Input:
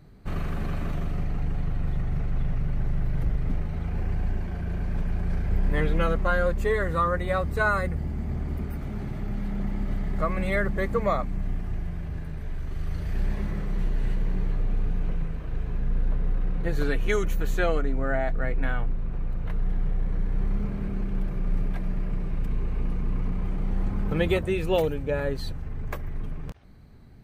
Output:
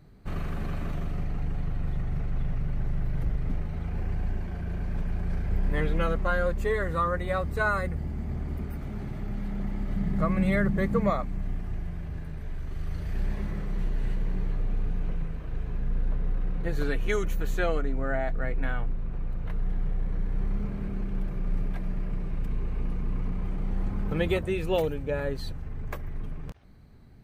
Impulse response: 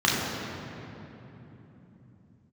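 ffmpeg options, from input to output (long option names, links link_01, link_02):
-filter_complex "[0:a]asettb=1/sr,asplit=3[link_01][link_02][link_03];[link_01]atrim=end=9.964[link_04];[link_02]atrim=start=9.96:end=11.1,asetpts=PTS-STARTPTS,afade=type=in:duration=0.004:curve=qsin,afade=type=out:start_time=1.136:duration=0.004:curve=qsin,equalizer=frequency=180:width_type=o:width=1:gain=9.5[link_05];[link_03]atrim=start=11.096[link_06];[link_04][link_05]acrossfade=duration=0.004:curve1=hsin:curve2=qsin[link_07];[link_07][link_06]acrossfade=duration=0.004:curve1=qsin:curve2=hsin,volume=-2.5dB"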